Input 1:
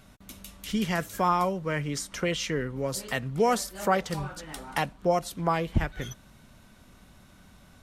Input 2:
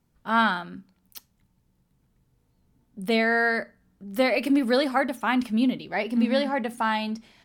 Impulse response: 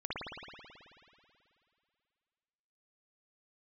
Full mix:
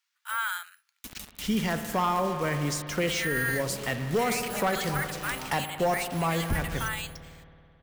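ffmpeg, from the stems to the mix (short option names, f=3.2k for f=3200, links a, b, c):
-filter_complex "[0:a]asoftclip=type=hard:threshold=-18.5dB,acrusher=bits=6:mix=0:aa=0.000001,adynamicequalizer=threshold=0.0158:dfrequency=1700:dqfactor=0.7:tfrequency=1700:tqfactor=0.7:attack=5:release=100:ratio=0.375:range=2:mode=cutabove:tftype=highshelf,adelay=750,volume=0dB,asplit=2[a][b];[b]volume=-11.5dB[c];[1:a]acrusher=samples=4:mix=1:aa=0.000001,highpass=f=1.4k:w=0.5412,highpass=f=1.4k:w=1.3066,deesser=0.55,volume=1.5dB[d];[2:a]atrim=start_sample=2205[e];[c][e]afir=irnorm=-1:irlink=0[f];[a][d][f]amix=inputs=3:normalize=0,alimiter=limit=-18.5dB:level=0:latency=1:release=12"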